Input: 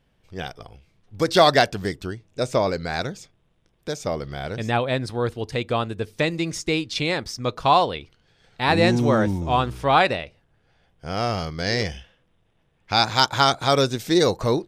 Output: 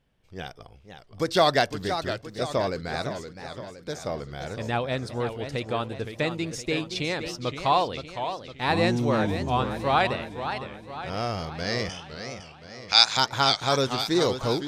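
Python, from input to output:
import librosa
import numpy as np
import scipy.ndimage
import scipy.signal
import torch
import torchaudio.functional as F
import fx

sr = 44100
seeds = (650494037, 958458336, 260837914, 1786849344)

y = fx.weighting(x, sr, curve='ITU-R 468', at=(11.89, 13.17))
y = fx.echo_warbled(y, sr, ms=515, feedback_pct=52, rate_hz=2.8, cents=189, wet_db=-9)
y = F.gain(torch.from_numpy(y), -5.0).numpy()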